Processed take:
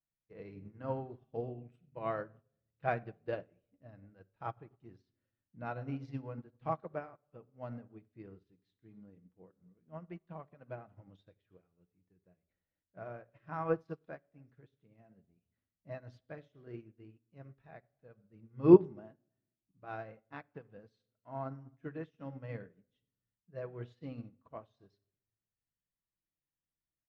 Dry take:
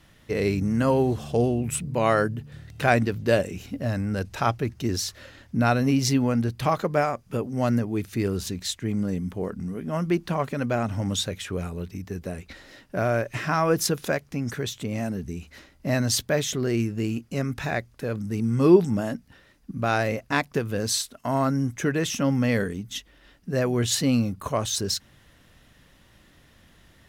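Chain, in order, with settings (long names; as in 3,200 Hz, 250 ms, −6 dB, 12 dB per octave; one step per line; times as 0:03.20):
dynamic equaliser 790 Hz, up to +5 dB, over −34 dBFS, Q 0.89
flanger 0.39 Hz, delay 1.3 ms, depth 1.6 ms, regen −83%
high-frequency loss of the air 330 metres
far-end echo of a speakerphone 260 ms, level −28 dB
convolution reverb RT60 1.0 s, pre-delay 6 ms, DRR 7.5 dB
expander for the loud parts 2.5 to 1, over −39 dBFS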